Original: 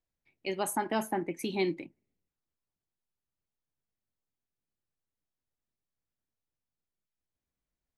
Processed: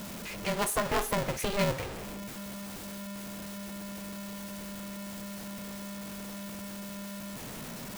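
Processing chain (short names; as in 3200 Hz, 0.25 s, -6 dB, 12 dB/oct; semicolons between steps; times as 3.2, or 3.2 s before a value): zero-crossing step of -33.5 dBFS; polarity switched at an audio rate 200 Hz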